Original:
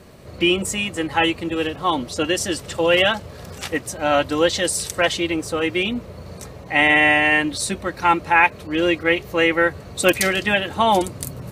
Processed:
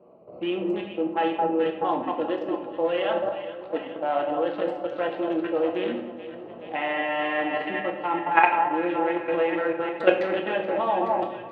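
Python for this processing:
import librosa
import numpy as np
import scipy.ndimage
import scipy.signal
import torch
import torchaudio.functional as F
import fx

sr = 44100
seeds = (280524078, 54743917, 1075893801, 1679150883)

y = fx.wiener(x, sr, points=25)
y = fx.echo_alternate(y, sr, ms=213, hz=1200.0, feedback_pct=74, wet_db=-7)
y = fx.level_steps(y, sr, step_db=13)
y = fx.cabinet(y, sr, low_hz=350.0, low_slope=12, high_hz=2700.0, hz=(630.0, 1500.0, 2200.0), db=(3, -4, -9))
y = fx.room_shoebox(y, sr, seeds[0], volume_m3=190.0, walls='mixed', distance_m=0.72)
y = F.gain(torch.from_numpy(y), 1.0).numpy()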